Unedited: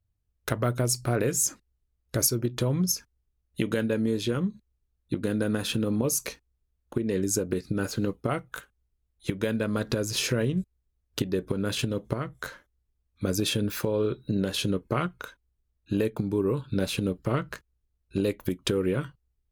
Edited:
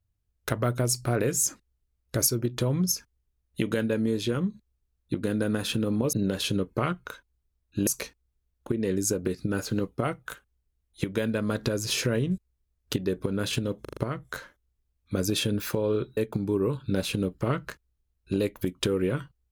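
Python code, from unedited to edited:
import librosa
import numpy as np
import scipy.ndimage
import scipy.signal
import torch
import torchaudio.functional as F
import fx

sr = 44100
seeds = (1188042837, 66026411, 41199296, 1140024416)

y = fx.edit(x, sr, fx.stutter(start_s=12.07, slice_s=0.04, count=5),
    fx.move(start_s=14.27, length_s=1.74, to_s=6.13), tone=tone)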